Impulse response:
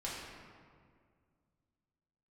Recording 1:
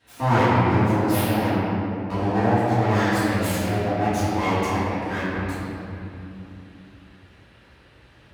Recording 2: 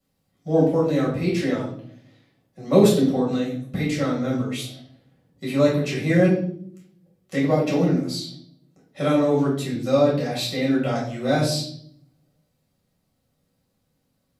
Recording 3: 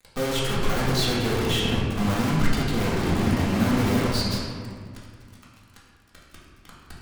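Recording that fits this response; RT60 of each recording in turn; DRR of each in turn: 3; 2.9, 0.60, 2.0 s; -14.5, -5.5, -7.0 dB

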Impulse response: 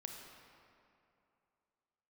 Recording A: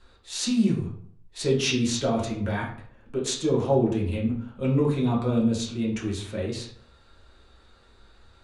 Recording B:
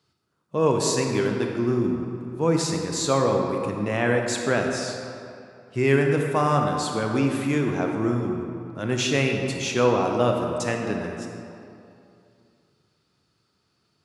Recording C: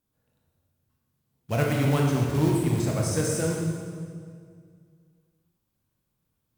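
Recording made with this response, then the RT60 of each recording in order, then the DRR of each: B; 0.55, 2.7, 2.1 s; -4.5, 2.0, -2.0 dB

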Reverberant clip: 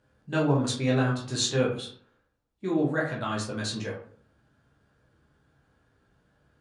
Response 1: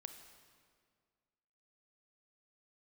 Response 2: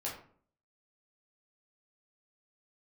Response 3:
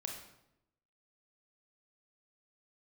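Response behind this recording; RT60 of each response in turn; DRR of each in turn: 2; 2.0, 0.50, 0.85 s; 6.5, -5.0, 1.0 dB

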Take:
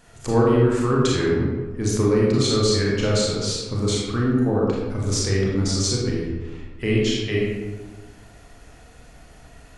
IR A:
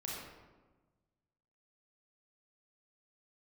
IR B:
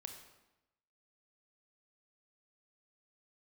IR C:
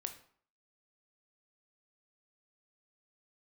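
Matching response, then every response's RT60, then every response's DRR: A; 1.3, 0.95, 0.55 s; -5.0, 4.5, 6.5 dB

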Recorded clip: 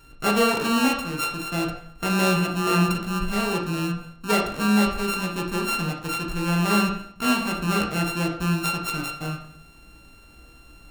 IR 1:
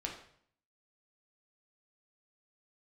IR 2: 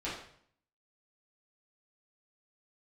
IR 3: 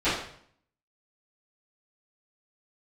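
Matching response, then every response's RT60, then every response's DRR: 1; 0.60, 0.60, 0.60 s; -0.5, -9.5, -18.0 dB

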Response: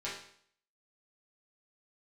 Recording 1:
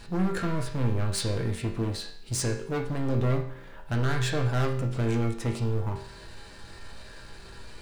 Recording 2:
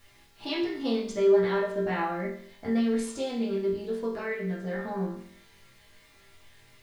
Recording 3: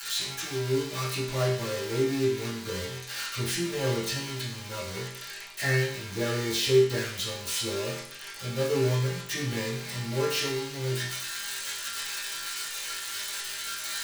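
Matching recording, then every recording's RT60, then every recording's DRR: 2; 0.60, 0.60, 0.60 s; 0.5, -8.5, -16.0 dB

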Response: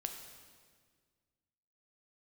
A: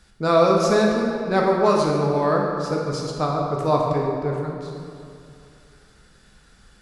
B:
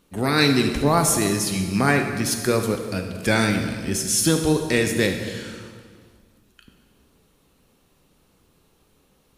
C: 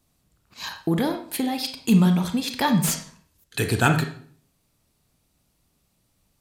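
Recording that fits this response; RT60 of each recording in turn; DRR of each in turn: B; 2.5, 1.7, 0.50 s; -2.0, 4.5, 5.5 dB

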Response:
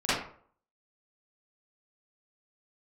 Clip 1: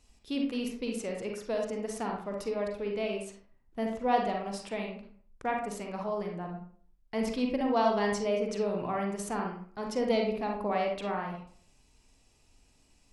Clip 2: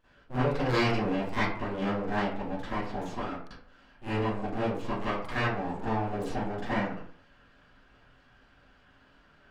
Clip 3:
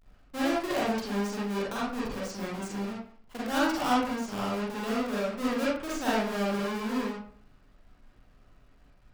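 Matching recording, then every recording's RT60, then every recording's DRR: 2; 0.50, 0.50, 0.50 s; 1.0, -15.0, -8.0 dB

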